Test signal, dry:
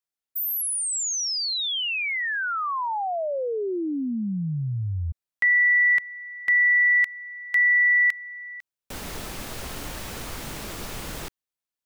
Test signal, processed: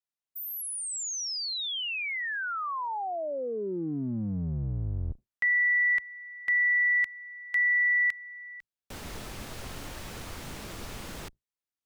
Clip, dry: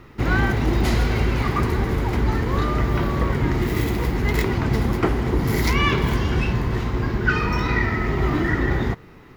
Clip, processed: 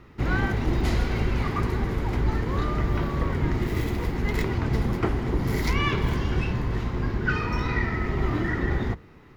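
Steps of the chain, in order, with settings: octaver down 1 oct, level -3 dB; high shelf 11000 Hz -6.5 dB; gain -5.5 dB

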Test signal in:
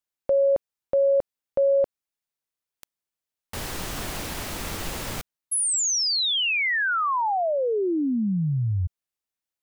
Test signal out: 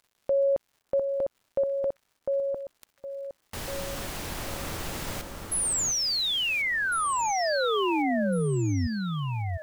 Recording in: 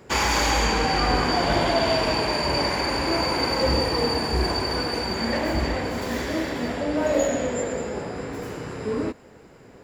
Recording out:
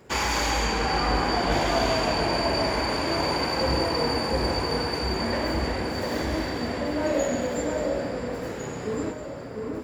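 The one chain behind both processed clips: crackle 250/s -50 dBFS; echo with dull and thin repeats by turns 0.702 s, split 1700 Hz, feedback 55%, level -3 dB; gain -3.5 dB

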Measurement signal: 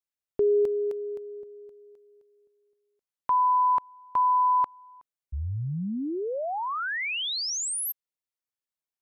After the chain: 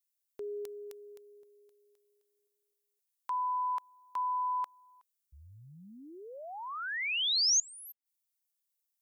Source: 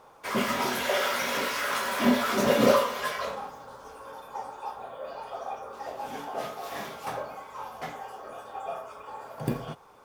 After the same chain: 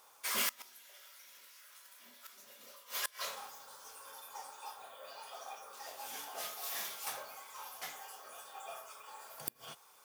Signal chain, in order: pre-emphasis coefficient 0.97; flipped gate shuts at -28 dBFS, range -27 dB; gain +6.5 dB

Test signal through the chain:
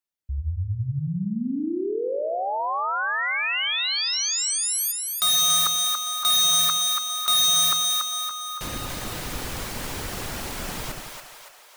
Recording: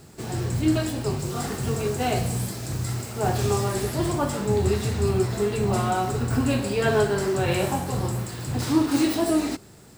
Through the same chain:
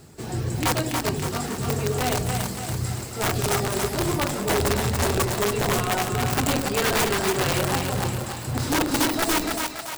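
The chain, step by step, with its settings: reverb removal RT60 0.53 s; wrapped overs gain 17 dB; split-band echo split 540 Hz, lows 87 ms, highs 0.283 s, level -4 dB

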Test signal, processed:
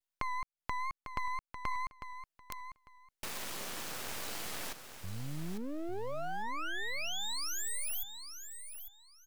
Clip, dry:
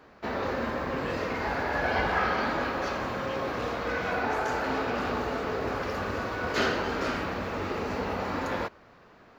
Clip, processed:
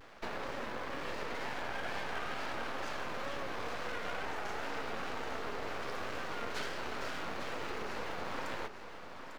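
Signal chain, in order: HPF 410 Hz 6 dB/oct; compressor 5:1, threshold -39 dBFS; wow and flutter 98 cents; half-wave rectifier; feedback echo 0.849 s, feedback 20%, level -9.5 dB; gain +5 dB

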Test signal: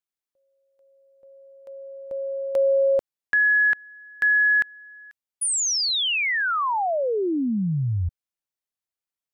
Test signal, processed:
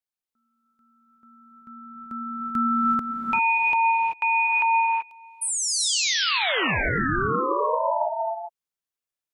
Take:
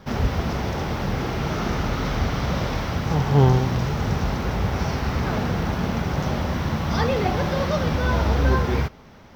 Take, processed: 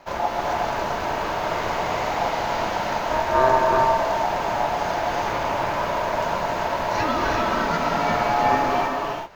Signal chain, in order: ring modulator 780 Hz; non-linear reverb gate 0.41 s rising, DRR 0 dB

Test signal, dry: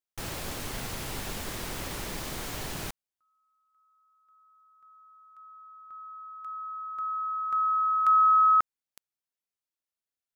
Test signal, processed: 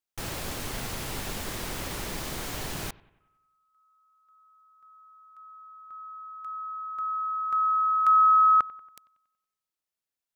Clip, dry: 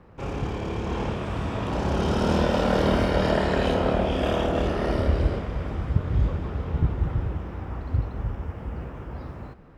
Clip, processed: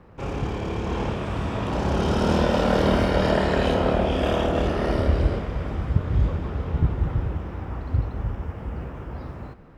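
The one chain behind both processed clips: analogue delay 93 ms, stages 2048, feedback 51%, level -21.5 dB; gain +1.5 dB

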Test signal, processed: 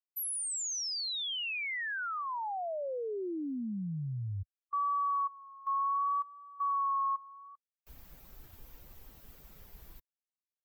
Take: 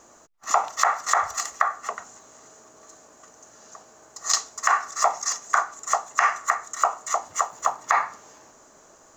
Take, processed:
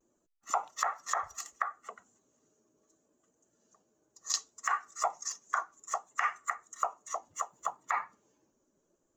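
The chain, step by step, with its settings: per-bin expansion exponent 1.5; vibrato 0.67 Hz 37 cents; gain -8.5 dB

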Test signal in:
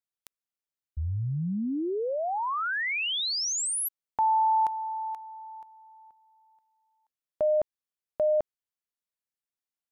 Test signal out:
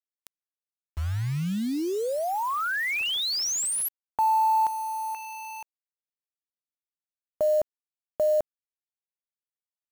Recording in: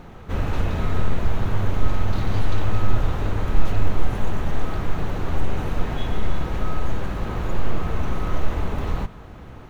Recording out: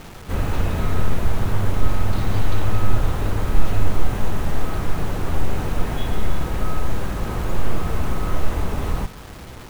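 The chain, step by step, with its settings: bit-crush 7-bit; gain +1.5 dB

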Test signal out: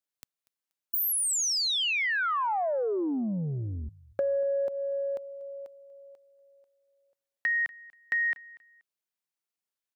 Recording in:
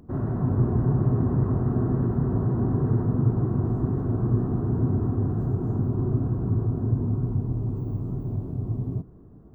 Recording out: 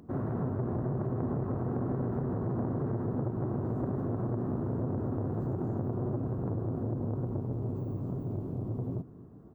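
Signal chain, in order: HPF 150 Hz 6 dB/oct; compressor 12:1, threshold -25 dBFS; on a send: feedback echo 0.24 s, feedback 27%, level -22 dB; on the sum: core saturation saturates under 410 Hz

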